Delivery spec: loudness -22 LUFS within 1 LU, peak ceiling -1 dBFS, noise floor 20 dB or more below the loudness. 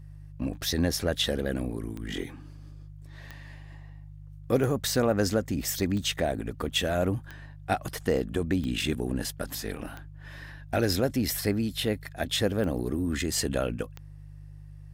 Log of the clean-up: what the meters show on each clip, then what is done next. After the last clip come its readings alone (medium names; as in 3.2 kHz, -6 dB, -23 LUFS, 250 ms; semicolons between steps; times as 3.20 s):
clicks found 11; hum 50 Hz; highest harmonic 150 Hz; hum level -42 dBFS; loudness -29.0 LUFS; peak level -11.5 dBFS; loudness target -22.0 LUFS
-> de-click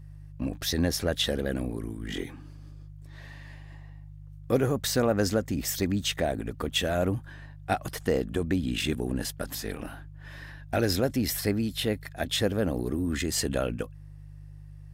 clicks found 0; hum 50 Hz; highest harmonic 150 Hz; hum level -42 dBFS
-> de-hum 50 Hz, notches 3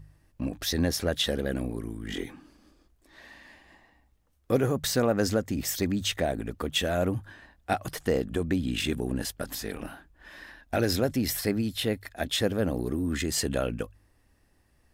hum not found; loudness -29.0 LUFS; peak level -12.0 dBFS; loudness target -22.0 LUFS
-> trim +7 dB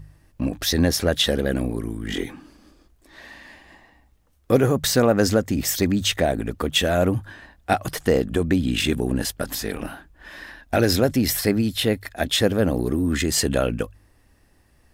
loudness -22.0 LUFS; peak level -5.0 dBFS; noise floor -59 dBFS